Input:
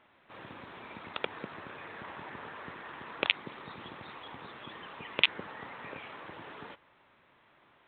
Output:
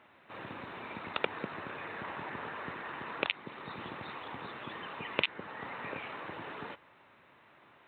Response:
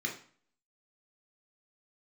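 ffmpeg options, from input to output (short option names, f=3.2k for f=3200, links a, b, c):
-af "highpass=68,bandreject=f=3.3k:w=13,alimiter=limit=-15dB:level=0:latency=1:release=493,volume=3.5dB"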